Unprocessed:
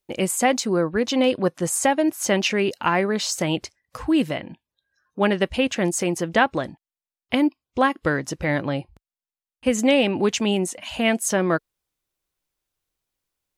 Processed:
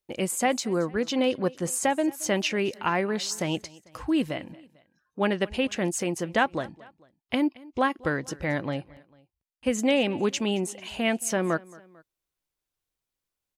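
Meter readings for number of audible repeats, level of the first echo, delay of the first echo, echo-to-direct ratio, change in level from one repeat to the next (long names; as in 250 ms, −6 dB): 2, −22.5 dB, 223 ms, −21.5 dB, −5.5 dB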